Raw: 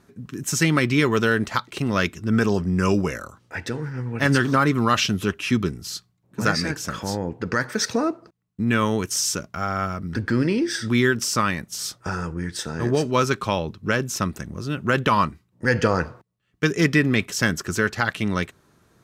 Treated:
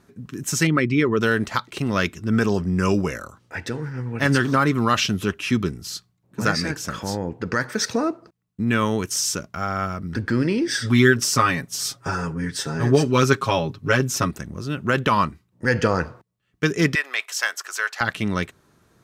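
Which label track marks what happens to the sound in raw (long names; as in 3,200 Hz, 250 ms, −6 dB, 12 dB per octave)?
0.670000	1.210000	spectral envelope exaggerated exponent 1.5
10.670000	14.310000	comb filter 7.3 ms, depth 99%
16.950000	18.010000	high-pass filter 690 Hz 24 dB per octave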